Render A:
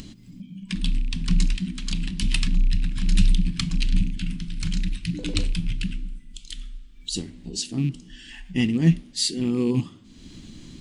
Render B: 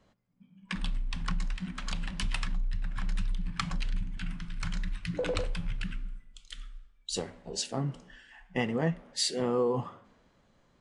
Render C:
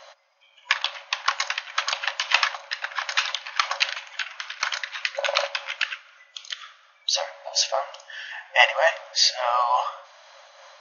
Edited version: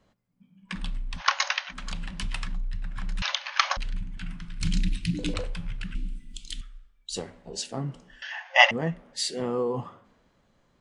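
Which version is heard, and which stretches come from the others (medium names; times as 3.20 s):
B
1.19–1.72 s: from C, crossfade 0.06 s
3.22–3.77 s: from C
4.61–5.34 s: from A
5.95–6.61 s: from A
8.22–8.71 s: from C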